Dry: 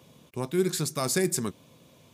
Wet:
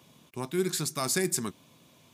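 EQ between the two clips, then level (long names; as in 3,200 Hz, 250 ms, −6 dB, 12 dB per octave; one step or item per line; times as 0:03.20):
low-shelf EQ 150 Hz −8 dB
parametric band 500 Hz −7.5 dB 0.52 octaves
0.0 dB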